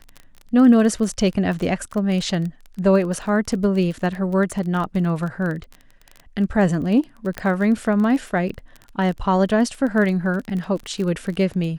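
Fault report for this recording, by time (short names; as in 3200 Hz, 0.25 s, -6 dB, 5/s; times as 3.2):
crackle 26/s -27 dBFS
7.38 pop -12 dBFS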